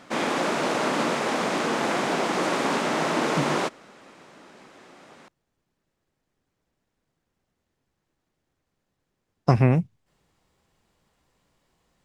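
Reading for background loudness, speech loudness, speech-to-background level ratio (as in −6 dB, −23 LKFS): −25.0 LKFS, −24.5 LKFS, 0.5 dB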